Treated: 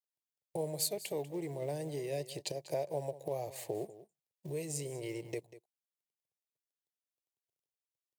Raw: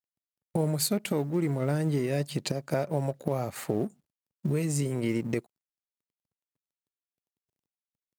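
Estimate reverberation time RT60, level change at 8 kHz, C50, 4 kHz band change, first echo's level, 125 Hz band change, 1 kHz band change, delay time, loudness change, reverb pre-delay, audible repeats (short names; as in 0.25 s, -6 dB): none, -4.5 dB, none, -5.5 dB, -16.0 dB, -14.5 dB, -7.5 dB, 0.192 s, -9.0 dB, none, 1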